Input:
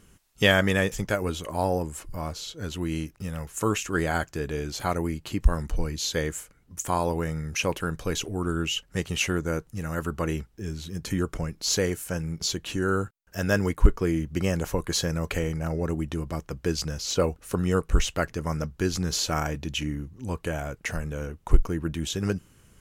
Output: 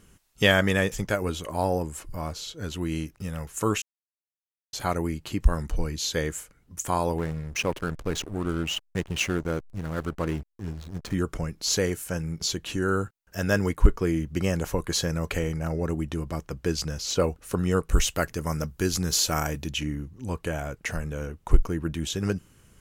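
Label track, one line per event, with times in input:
3.820000	4.730000	mute
7.180000	11.140000	hysteresis with a dead band play -30.5 dBFS
17.890000	19.700000	treble shelf 7.9 kHz +12 dB

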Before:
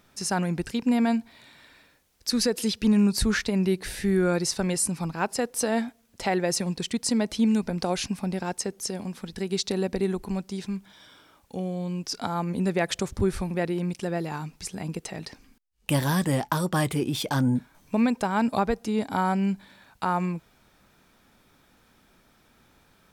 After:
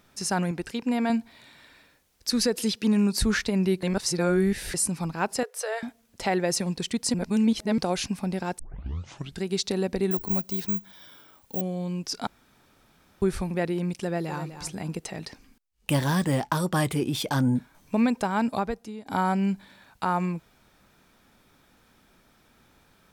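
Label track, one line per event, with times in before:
0.510000	1.100000	tone controls bass -7 dB, treble -3 dB
2.750000	3.190000	high-pass 180 Hz
3.830000	4.740000	reverse
5.430000	5.830000	rippled Chebyshev high-pass 410 Hz, ripple 6 dB
7.140000	7.780000	reverse
8.590000	8.590000	tape start 0.84 s
10.110000	11.610000	careless resampling rate divided by 2×, down none, up zero stuff
12.270000	13.220000	room tone
14.030000	14.470000	echo throw 250 ms, feedback 20%, level -10.5 dB
15.920000	16.550000	median filter over 3 samples
18.070000	19.060000	fade out equal-power, to -22 dB

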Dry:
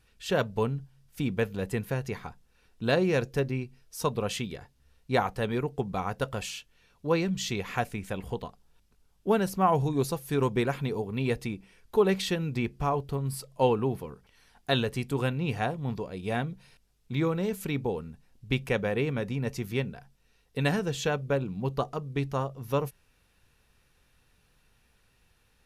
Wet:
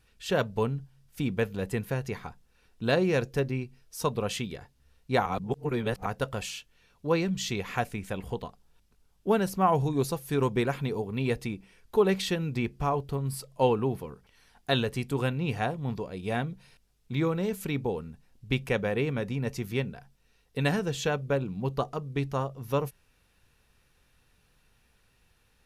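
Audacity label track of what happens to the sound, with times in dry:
5.260000	6.060000	reverse

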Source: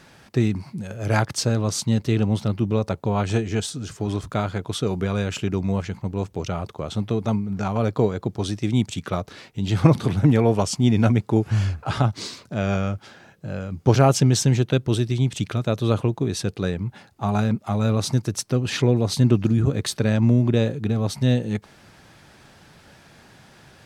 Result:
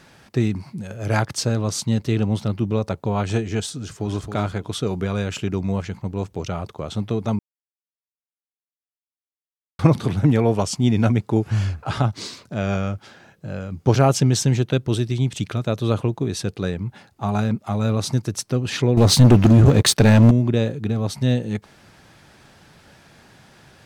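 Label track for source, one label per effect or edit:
3.820000	4.270000	echo throw 270 ms, feedback 20%, level -8 dB
7.390000	9.790000	mute
18.970000	20.310000	waveshaping leveller passes 3

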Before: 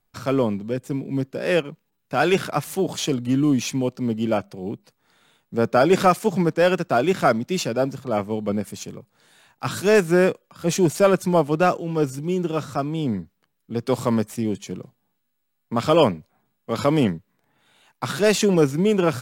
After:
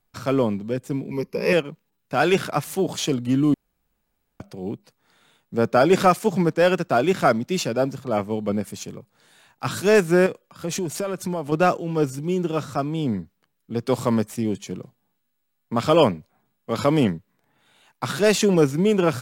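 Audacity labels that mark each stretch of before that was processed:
1.110000	1.530000	rippled EQ curve crests per octave 0.84, crest to trough 15 dB
3.540000	4.400000	room tone
10.260000	11.520000	compression 10:1, threshold -22 dBFS

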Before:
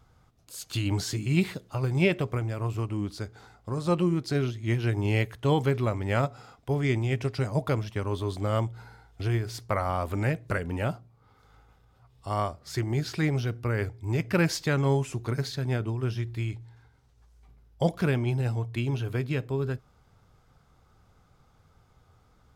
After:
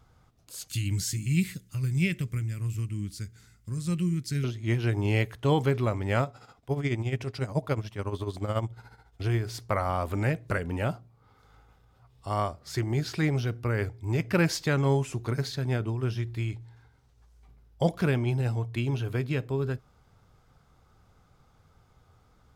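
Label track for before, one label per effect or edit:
0.680000	4.440000	FFT filter 180 Hz 0 dB, 780 Hz -25 dB, 2 kHz -2 dB, 3.8 kHz -5 dB, 7.7 kHz +6 dB
6.220000	9.240000	tremolo 14 Hz, depth 66%

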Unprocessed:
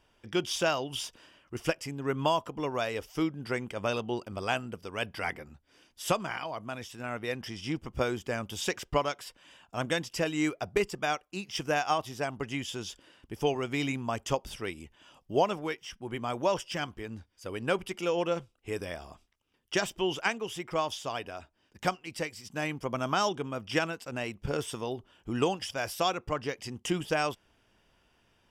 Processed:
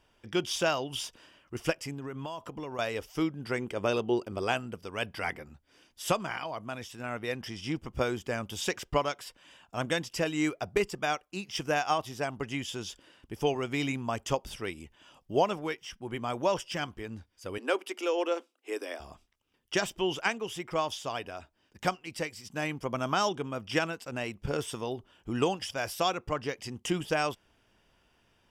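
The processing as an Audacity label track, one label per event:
1.930000	2.790000	compression 10:1, threshold -34 dBFS
3.580000	4.520000	peaking EQ 380 Hz +7 dB
17.580000	19.000000	steep high-pass 250 Hz 72 dB/octave

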